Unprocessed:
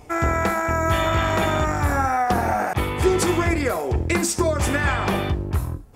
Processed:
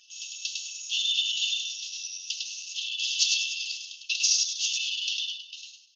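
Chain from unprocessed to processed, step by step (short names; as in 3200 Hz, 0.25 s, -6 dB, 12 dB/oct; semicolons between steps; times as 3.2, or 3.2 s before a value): brick-wall FIR band-pass 2600–6800 Hz; feedback echo 0.102 s, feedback 33%, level -3.5 dB; gain +7 dB; Opus 12 kbps 48000 Hz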